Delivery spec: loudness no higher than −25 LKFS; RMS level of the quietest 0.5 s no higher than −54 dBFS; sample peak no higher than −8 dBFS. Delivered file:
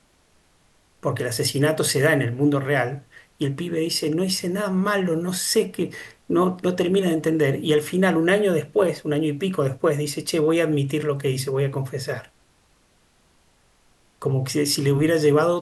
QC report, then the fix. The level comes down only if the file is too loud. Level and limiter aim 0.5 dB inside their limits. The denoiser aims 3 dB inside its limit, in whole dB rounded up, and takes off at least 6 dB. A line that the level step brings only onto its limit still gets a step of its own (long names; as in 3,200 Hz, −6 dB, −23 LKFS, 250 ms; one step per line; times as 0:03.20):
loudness −22.0 LKFS: out of spec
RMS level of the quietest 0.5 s −61 dBFS: in spec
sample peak −7.0 dBFS: out of spec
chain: level −3.5 dB